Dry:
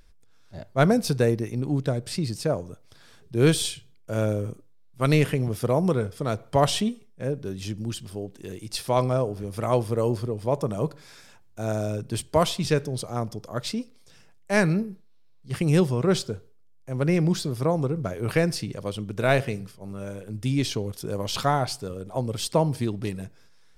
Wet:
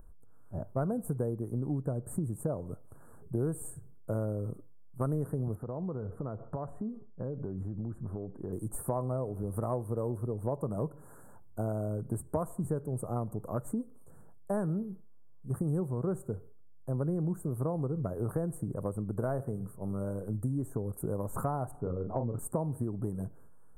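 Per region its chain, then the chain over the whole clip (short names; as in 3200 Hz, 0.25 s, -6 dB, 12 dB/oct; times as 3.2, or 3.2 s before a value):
5.55–8.53 compressor 12:1, threshold -34 dBFS + polynomial smoothing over 25 samples
21.71–22.39 polynomial smoothing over 41 samples + doubler 34 ms -5 dB
whole clip: inverse Chebyshev band-stop 2300–5400 Hz, stop band 50 dB; low shelf 370 Hz +3.5 dB; compressor 6:1, threshold -30 dBFS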